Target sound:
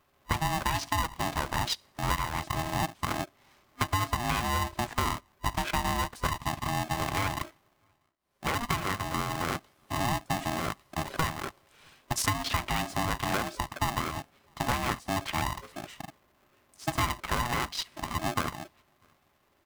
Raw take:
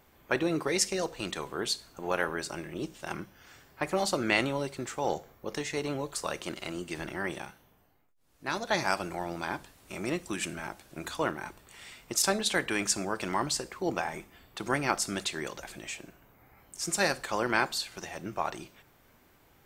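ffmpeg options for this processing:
-filter_complex "[0:a]acrossover=split=130|1100[a][b][c];[c]asoftclip=type=tanh:threshold=-25.5dB[d];[a][b][d]amix=inputs=3:normalize=0,asplit=2[e][f];[f]adelay=641.4,volume=-28dB,highshelf=f=4k:g=-14.4[g];[e][g]amix=inputs=2:normalize=0,afwtdn=0.0158,highshelf=f=4.2k:g=-5,acontrast=78,superequalizer=8b=2.51:15b=0.631,acompressor=threshold=-27dB:ratio=10,highpass=f=47:w=0.5412,highpass=f=47:w=1.3066,bandreject=f=680:w=12,aeval=exprs='val(0)*sgn(sin(2*PI*480*n/s))':c=same,volume=2.5dB"

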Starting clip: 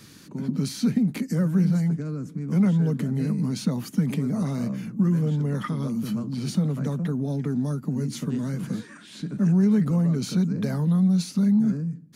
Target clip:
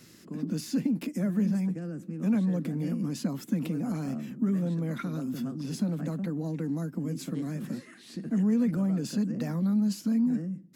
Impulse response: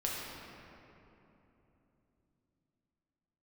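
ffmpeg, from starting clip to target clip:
-af "asetrate=49833,aresample=44100,volume=-5.5dB"

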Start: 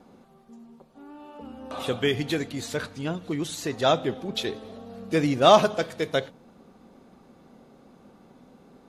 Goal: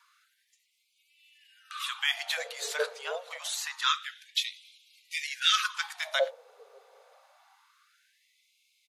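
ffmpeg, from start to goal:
-filter_complex "[0:a]acrossover=split=220|820[a][b][c];[b]adelay=50[d];[a]adelay=590[e];[e][d][c]amix=inputs=3:normalize=0,afftfilt=real='re*gte(b*sr/1024,390*pow(2100/390,0.5+0.5*sin(2*PI*0.26*pts/sr)))':imag='im*gte(b*sr/1024,390*pow(2100/390,0.5+0.5*sin(2*PI*0.26*pts/sr)))':win_size=1024:overlap=0.75,volume=2dB"

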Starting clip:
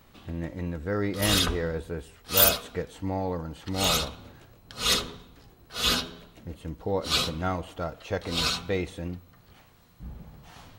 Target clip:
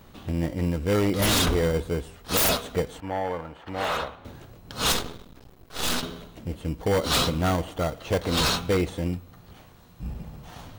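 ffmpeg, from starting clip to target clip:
-filter_complex "[0:a]asplit=2[a][b];[b]acrusher=samples=17:mix=1:aa=0.000001,volume=-3.5dB[c];[a][c]amix=inputs=2:normalize=0,aeval=exprs='0.119*(abs(mod(val(0)/0.119+3,4)-2)-1)':c=same,asettb=1/sr,asplit=3[d][e][f];[d]atrim=end=3.004[g];[e]atrim=start=3:end=4.25,asetpts=PTS-STARTPTS,afade=t=in:d=0.004:c=qsin,afade=t=out:st=1.246:d=0.004:c=qsin,acrossover=split=500 2600:gain=0.224 1 0.112[h][i][j];[h][i][j]amix=inputs=3:normalize=0[k];[f]atrim=start=4.246[l];[g][k]acrossfade=d=0.004:c1=hsin:c2=qsin[m];[m][l]acrossfade=d=0.004:c1=qsin:c2=hsin,asettb=1/sr,asplit=3[n][o][p];[n]atrim=end=4.924[q];[o]atrim=start=4.92:end=6.03,asetpts=PTS-STARTPTS,afade=t=in:d=0.004:c=qsin,afade=t=out:st=1.106:d=0.004:c=qsin,aeval=exprs='max(val(0),0)':c=same[r];[p]atrim=start=6.026[s];[q][r]acrossfade=d=0.004:c1=hsin:c2=qsin[t];[t][s]acrossfade=d=0.004:c1=qsin:c2=hsin,volume=2.5dB"

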